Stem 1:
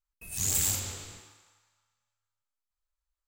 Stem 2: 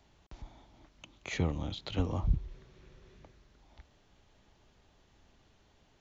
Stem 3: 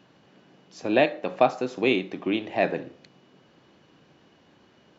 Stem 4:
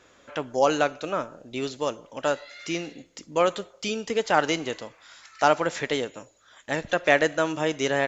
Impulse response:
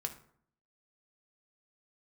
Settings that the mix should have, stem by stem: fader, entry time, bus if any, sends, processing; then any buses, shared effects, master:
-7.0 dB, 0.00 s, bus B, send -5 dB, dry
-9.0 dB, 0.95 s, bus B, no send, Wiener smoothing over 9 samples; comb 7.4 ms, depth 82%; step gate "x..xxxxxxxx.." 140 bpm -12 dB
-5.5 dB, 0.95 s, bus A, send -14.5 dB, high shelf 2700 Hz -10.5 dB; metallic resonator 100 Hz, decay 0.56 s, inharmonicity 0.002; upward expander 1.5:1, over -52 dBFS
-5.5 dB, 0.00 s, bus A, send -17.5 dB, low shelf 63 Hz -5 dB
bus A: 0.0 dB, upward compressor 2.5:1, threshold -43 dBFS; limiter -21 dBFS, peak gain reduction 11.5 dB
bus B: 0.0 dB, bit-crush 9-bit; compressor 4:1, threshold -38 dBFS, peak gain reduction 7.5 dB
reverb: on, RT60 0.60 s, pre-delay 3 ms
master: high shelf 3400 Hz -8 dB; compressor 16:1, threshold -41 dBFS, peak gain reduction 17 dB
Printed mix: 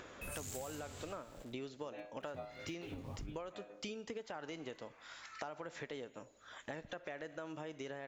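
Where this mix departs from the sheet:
stem 1 -7.0 dB -> +0.5 dB; stem 3: missing high shelf 2700 Hz -10.5 dB; stem 4: missing low shelf 63 Hz -5 dB

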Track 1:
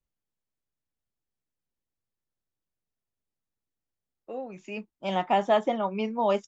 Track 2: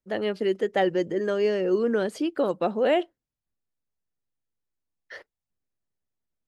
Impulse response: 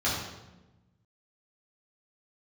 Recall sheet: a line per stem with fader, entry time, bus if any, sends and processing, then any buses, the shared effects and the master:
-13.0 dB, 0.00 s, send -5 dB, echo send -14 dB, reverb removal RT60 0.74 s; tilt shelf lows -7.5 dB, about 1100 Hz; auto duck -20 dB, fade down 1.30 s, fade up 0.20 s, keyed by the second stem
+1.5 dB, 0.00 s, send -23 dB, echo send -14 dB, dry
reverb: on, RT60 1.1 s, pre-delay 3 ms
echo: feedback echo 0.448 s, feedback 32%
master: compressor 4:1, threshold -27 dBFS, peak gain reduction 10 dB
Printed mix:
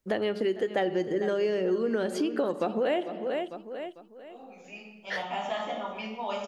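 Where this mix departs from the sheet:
stem 1: missing reverb removal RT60 0.74 s; stem 2 +1.5 dB -> +8.0 dB

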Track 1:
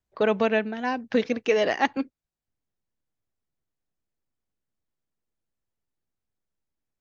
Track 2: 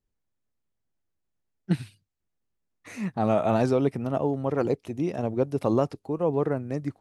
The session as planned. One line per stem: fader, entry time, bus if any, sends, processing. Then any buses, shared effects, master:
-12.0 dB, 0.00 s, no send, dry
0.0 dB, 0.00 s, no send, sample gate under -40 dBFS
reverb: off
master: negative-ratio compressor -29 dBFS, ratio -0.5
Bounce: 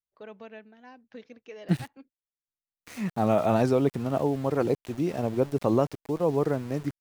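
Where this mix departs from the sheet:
stem 1 -12.0 dB -> -22.0 dB; master: missing negative-ratio compressor -29 dBFS, ratio -0.5

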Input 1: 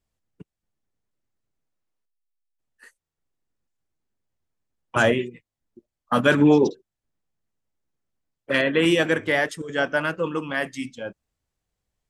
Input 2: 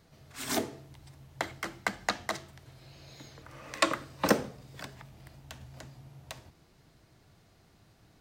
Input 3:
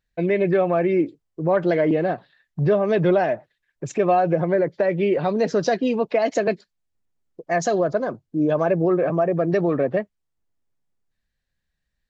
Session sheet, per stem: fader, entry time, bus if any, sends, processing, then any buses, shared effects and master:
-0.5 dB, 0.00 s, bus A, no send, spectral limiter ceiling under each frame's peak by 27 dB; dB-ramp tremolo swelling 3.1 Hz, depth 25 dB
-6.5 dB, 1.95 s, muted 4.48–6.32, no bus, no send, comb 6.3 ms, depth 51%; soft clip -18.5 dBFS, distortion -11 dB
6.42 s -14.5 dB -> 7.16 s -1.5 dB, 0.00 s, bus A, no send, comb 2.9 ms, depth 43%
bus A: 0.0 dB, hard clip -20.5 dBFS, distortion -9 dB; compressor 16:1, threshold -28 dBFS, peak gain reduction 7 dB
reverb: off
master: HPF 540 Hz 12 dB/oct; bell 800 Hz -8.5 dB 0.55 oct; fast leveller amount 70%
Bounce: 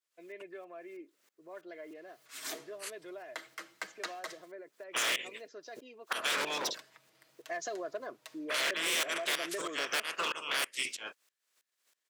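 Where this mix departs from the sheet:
stem 1 -0.5 dB -> +11.0 dB; stem 3 -14.5 dB -> -22.5 dB; master: missing fast leveller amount 70%

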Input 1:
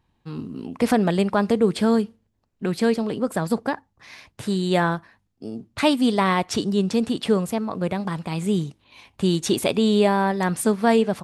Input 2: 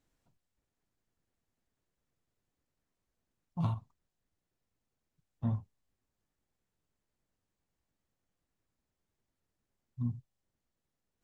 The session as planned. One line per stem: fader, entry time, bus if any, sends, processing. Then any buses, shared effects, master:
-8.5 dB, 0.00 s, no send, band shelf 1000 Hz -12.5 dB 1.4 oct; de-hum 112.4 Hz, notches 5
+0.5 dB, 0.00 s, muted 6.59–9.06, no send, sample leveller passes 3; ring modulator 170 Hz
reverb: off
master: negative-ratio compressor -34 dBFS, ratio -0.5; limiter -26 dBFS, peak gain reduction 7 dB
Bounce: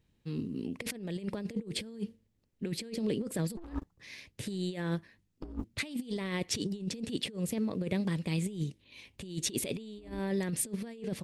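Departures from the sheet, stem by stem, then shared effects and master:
stem 1: missing de-hum 112.4 Hz, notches 5; master: missing limiter -26 dBFS, peak gain reduction 7 dB

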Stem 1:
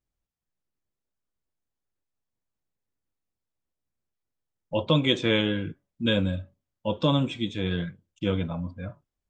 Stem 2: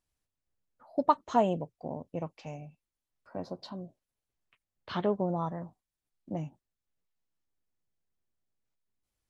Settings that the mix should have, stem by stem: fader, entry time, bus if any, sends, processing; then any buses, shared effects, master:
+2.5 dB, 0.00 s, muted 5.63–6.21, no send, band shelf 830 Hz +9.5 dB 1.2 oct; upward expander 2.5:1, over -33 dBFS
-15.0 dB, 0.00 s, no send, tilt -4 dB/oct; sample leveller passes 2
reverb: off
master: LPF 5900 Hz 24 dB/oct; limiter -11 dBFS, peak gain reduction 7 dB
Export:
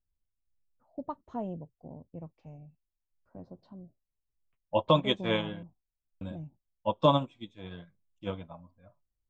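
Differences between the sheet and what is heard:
stem 2: missing sample leveller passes 2; master: missing LPF 5900 Hz 24 dB/oct

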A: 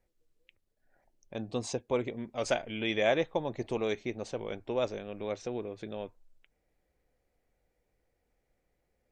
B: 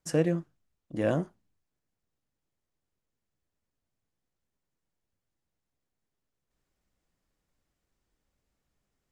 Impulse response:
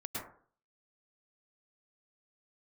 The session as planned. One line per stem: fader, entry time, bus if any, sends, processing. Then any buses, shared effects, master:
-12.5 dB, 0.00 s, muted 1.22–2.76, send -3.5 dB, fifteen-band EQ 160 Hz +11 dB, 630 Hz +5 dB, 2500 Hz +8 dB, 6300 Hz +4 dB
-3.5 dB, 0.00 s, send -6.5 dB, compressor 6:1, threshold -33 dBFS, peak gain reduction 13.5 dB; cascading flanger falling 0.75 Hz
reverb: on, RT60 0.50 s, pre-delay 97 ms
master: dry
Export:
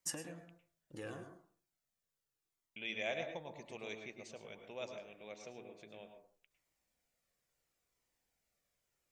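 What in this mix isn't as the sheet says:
stem A -12.5 dB -> -19.5 dB; master: extra tilt +2.5 dB/oct

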